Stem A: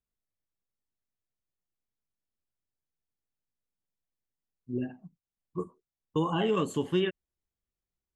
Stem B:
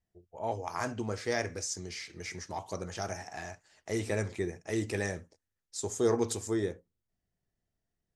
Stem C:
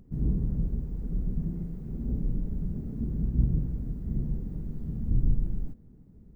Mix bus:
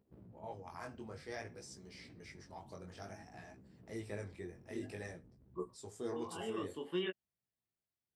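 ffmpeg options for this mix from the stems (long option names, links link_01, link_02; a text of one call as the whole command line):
ffmpeg -i stem1.wav -i stem2.wav -i stem3.wav -filter_complex "[0:a]highpass=290,volume=-3dB[link_01];[1:a]volume=-10dB,asplit=2[link_02][link_03];[2:a]lowshelf=frequency=240:gain=-3.5,acompressor=threshold=-35dB:ratio=10,aeval=exprs='abs(val(0))':channel_layout=same,volume=-11.5dB[link_04];[link_03]apad=whole_len=359576[link_05];[link_01][link_05]sidechaincompress=threshold=-43dB:ratio=8:attack=8.1:release=597[link_06];[link_06][link_02][link_04]amix=inputs=3:normalize=0,highpass=76,equalizer=frequency=6600:width_type=o:width=0.23:gain=-13,flanger=delay=15.5:depth=6.9:speed=0.55" out.wav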